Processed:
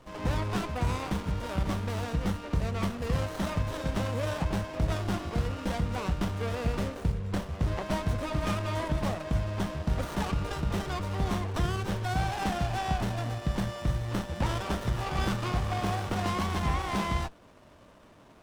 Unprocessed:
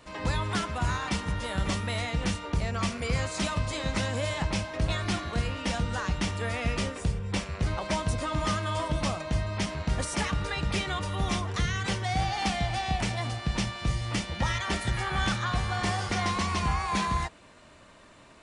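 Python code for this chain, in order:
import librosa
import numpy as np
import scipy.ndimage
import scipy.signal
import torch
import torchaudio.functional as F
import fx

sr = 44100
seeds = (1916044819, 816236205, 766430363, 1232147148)

y = fx.running_max(x, sr, window=17)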